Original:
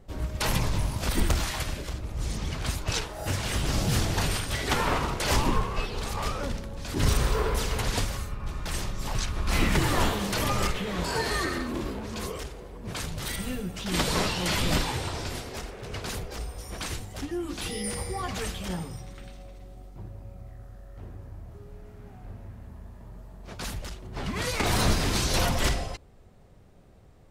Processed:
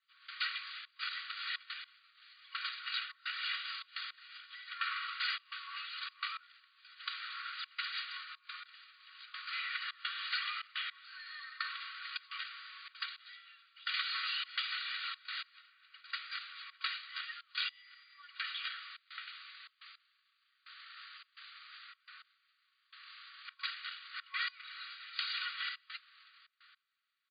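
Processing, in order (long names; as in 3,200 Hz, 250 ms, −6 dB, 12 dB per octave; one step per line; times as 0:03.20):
comb filter 2.1 ms, depth 64%
noise that follows the level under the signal 13 dB
gate pattern "..xxxx.xxxx.x..." 106 BPM −24 dB
downward compressor 6 to 1, threshold −35 dBFS, peak gain reduction 18.5 dB
brick-wall band-pass 1,100–4,800 Hz
level +6.5 dB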